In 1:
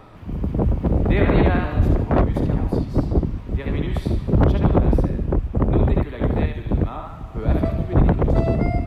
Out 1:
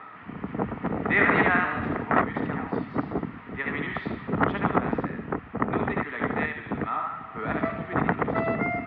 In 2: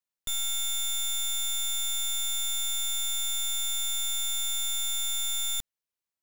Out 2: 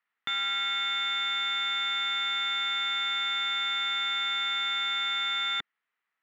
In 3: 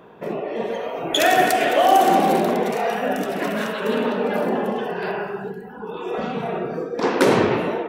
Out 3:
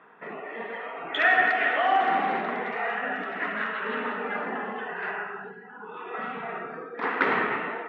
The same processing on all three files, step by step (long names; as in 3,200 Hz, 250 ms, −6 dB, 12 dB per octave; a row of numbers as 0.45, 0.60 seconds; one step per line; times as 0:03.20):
loudspeaker in its box 290–3,000 Hz, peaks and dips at 350 Hz −9 dB, 560 Hz −10 dB, 1,300 Hz +8 dB, 1,900 Hz +10 dB
loudness normalisation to −27 LKFS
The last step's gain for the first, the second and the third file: +1.0, +9.5, −6.5 decibels